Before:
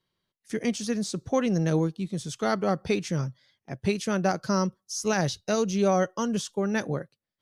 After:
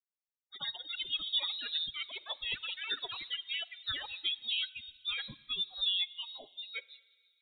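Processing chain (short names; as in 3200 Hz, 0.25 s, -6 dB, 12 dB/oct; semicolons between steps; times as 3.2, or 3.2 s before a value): per-bin expansion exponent 3; HPF 320 Hz 12 dB/oct; echoes that change speed 0.123 s, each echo +5 st, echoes 3; shoebox room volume 3800 m³, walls mixed, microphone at 0.32 m; inverted band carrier 4000 Hz; gain -4 dB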